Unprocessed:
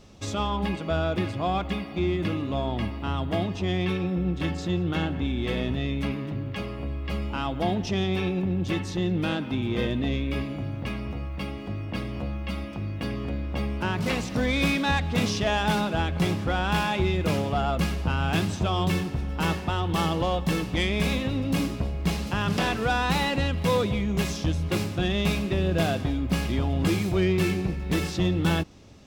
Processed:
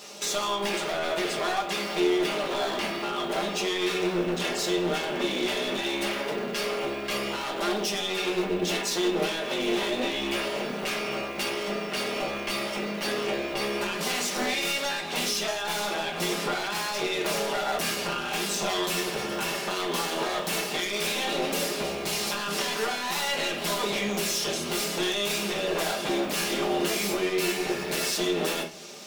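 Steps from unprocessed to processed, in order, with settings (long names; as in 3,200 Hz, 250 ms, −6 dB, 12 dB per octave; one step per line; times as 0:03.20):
lower of the sound and its delayed copy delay 5 ms
high-pass filter 420 Hz 12 dB per octave
high-shelf EQ 3,400 Hz +10.5 dB
downward compressor 3 to 1, threshold −34 dBFS, peak gain reduction 10.5 dB
brickwall limiter −26 dBFS, peak gain reduction 6.5 dB
soft clipping −32.5 dBFS, distortion −15 dB
rectangular room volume 34 cubic metres, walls mixed, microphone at 0.51 metres
level +8.5 dB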